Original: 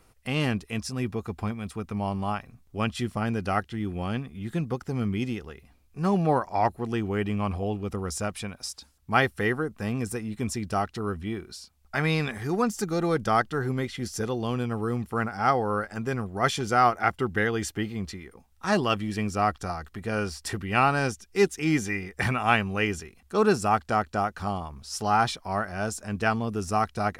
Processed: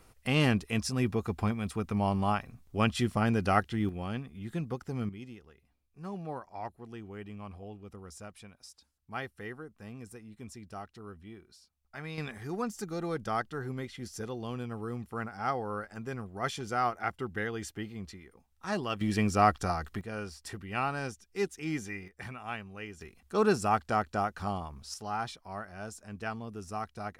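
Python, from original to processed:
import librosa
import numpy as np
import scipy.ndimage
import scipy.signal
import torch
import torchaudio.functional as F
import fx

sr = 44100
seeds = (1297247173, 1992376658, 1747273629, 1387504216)

y = fx.gain(x, sr, db=fx.steps((0.0, 0.5), (3.89, -6.0), (5.09, -16.0), (12.18, -9.0), (19.01, 1.0), (20.01, -10.0), (22.08, -16.5), (23.01, -4.0), (24.94, -12.0)))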